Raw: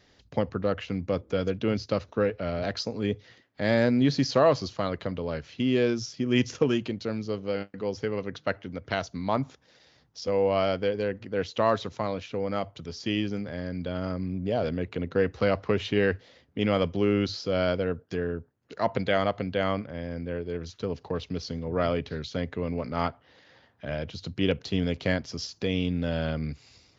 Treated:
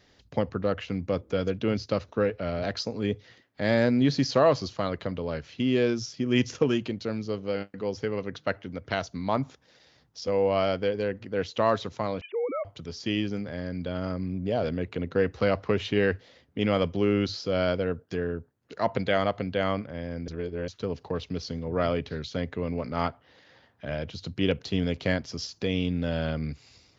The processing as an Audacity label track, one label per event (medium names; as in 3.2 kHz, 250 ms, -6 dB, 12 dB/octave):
12.210000	12.650000	formants replaced by sine waves
20.280000	20.680000	reverse